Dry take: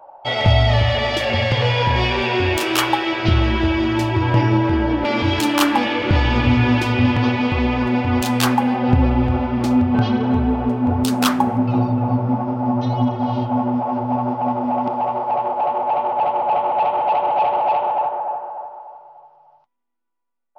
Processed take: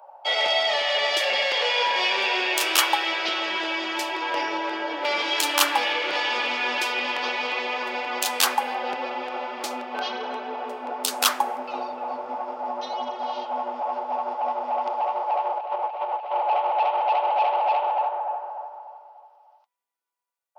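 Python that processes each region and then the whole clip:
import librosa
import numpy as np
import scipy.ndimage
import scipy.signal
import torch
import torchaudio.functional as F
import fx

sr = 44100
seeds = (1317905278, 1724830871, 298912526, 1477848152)

y = fx.chain(x, sr, fx.over_compress(threshold_db=-23.0, ratio=-0.5),
    fx.peak_eq(hz=9900.0, db=-11.5, octaves=0.39), at=(15.57, 16.35))
y = scipy.signal.sosfilt(scipy.signal.butter(4, 450.0, 'highpass', fs=sr, output='sos'), y)
y = fx.high_shelf(y, sr, hz=2400.0, db=9.0)
y = F.gain(torch.from_numpy(y), -5.0).numpy()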